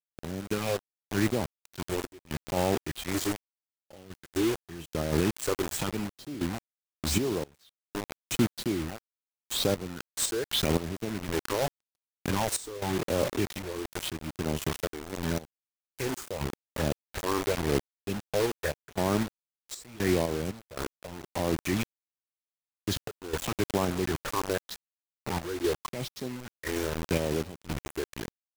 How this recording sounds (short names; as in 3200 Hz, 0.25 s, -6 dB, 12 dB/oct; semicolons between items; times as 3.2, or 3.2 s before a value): phasing stages 6, 0.85 Hz, lowest notch 170–2400 Hz; a quantiser's noise floor 6-bit, dither none; random-step tremolo 3.9 Hz, depth 100%